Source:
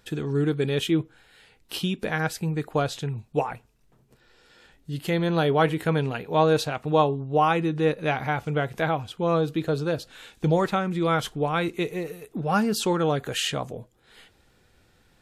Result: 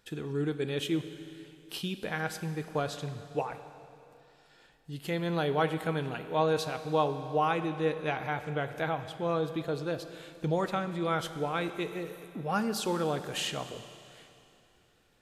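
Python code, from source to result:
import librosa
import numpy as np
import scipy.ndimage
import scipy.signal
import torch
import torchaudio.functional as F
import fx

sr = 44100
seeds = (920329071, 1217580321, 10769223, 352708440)

y = fx.low_shelf(x, sr, hz=190.0, db=-4.0)
y = fx.rev_schroeder(y, sr, rt60_s=2.8, comb_ms=31, drr_db=10.0)
y = F.gain(torch.from_numpy(y), -6.5).numpy()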